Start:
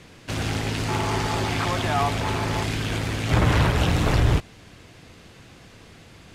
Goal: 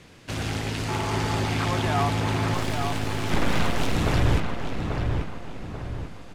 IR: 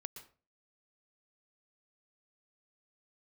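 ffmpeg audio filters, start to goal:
-filter_complex "[0:a]asettb=1/sr,asplit=3[a][b][c];[a]atrim=end=2.544[d];[b]atrim=start=2.54:end=3.96,asetpts=PTS-STARTPTS,afade=t=in:d=0.004:c=qsin,afade=t=out:st=1.416:d=0.004:c=qsin,aeval=exprs='abs(val(0))':c=same[e];[c]atrim=start=3.956[f];[d][e]acrossfade=d=0.004:c1=hsin:c2=qsin[g];[g][f]acrossfade=d=0.004:c1=qsin:c2=hsin,asplit=2[h][i];[i]adelay=838,lowpass=f=2.3k:p=1,volume=-4.5dB,asplit=2[j][k];[k]adelay=838,lowpass=f=2.3k:p=1,volume=0.45,asplit=2[l][m];[m]adelay=838,lowpass=f=2.3k:p=1,volume=0.45,asplit=2[n][o];[o]adelay=838,lowpass=f=2.3k:p=1,volume=0.45,asplit=2[p][q];[q]adelay=838,lowpass=f=2.3k:p=1,volume=0.45,asplit=2[r][s];[s]adelay=838,lowpass=f=2.3k:p=1,volume=0.45[t];[h][j][l][n][p][r][t]amix=inputs=7:normalize=0,volume=-2.5dB"

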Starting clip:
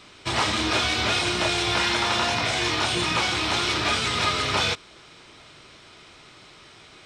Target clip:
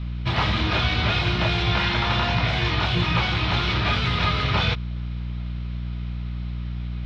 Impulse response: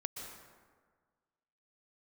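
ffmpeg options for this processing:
-af "lowpass=f=4.1k:w=0.5412,lowpass=f=4.1k:w=1.3066,aeval=exprs='val(0)+0.0158*(sin(2*PI*60*n/s)+sin(2*PI*2*60*n/s)/2+sin(2*PI*3*60*n/s)/3+sin(2*PI*4*60*n/s)/4+sin(2*PI*5*60*n/s)/5)':c=same,lowshelf=f=220:t=q:w=1.5:g=8"

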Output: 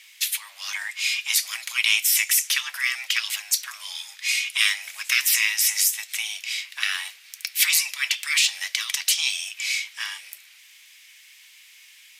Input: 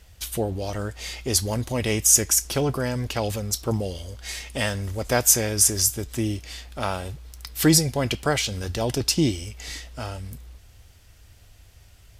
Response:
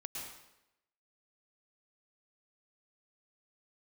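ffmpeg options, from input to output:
-af "afftfilt=real='re*lt(hypot(re,im),0.141)':imag='im*lt(hypot(re,im),0.141)':win_size=1024:overlap=0.75,highpass=f=1.9k:t=q:w=2.6,afreqshift=310,volume=7dB"

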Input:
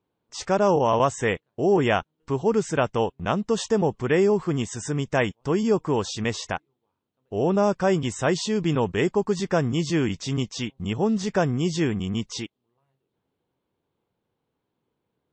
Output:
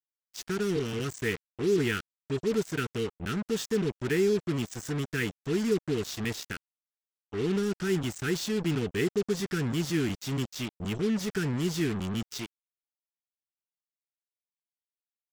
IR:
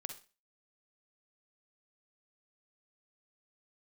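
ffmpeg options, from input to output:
-af "asuperstop=centerf=770:order=20:qfactor=0.93,acrusher=bits=4:mix=0:aa=0.5,volume=-5dB"

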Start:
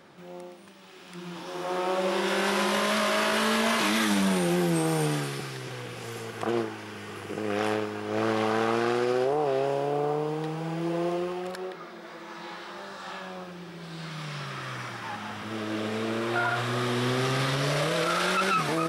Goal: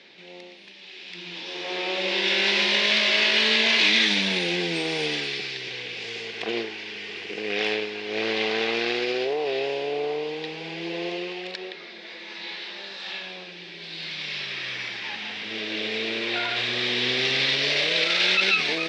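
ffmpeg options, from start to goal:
-af "aexciter=amount=11.2:drive=3.4:freq=2k,highpass=f=130:w=0.5412,highpass=f=130:w=1.3066,equalizer=f=150:t=q:w=4:g=-8,equalizer=f=430:t=q:w=4:g=6,equalizer=f=1.2k:t=q:w=4:g=-5,equalizer=f=3.1k:t=q:w=4:g=-5,lowpass=f=3.8k:w=0.5412,lowpass=f=3.8k:w=1.3066,volume=-4dB"

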